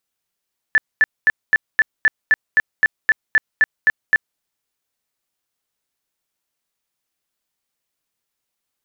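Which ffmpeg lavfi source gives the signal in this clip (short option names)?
-f lavfi -i "aevalsrc='0.355*sin(2*PI*1750*mod(t,0.26))*lt(mod(t,0.26),51/1750)':d=3.64:s=44100"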